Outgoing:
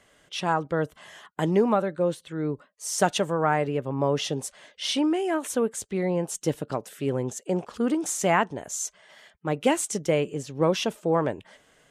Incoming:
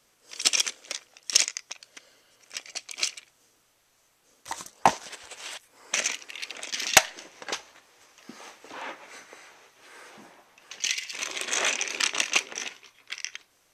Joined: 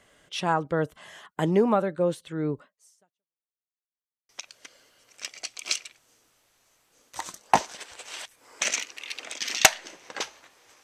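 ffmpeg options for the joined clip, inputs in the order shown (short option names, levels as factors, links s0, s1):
-filter_complex "[0:a]apad=whole_dur=10.83,atrim=end=10.83,asplit=2[s0][s1];[s0]atrim=end=3.46,asetpts=PTS-STARTPTS,afade=t=out:st=2.67:d=0.79:c=exp[s2];[s1]atrim=start=3.46:end=4.29,asetpts=PTS-STARTPTS,volume=0[s3];[1:a]atrim=start=1.61:end=8.15,asetpts=PTS-STARTPTS,afade=t=in:d=0.004:c=hsin[s4];[s2][s3][s4]concat=n=3:v=0:a=1"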